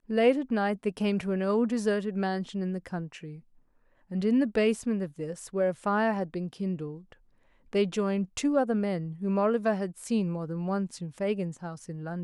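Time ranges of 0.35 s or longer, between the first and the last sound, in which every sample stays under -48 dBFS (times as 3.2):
3.4–4.11
7.13–7.73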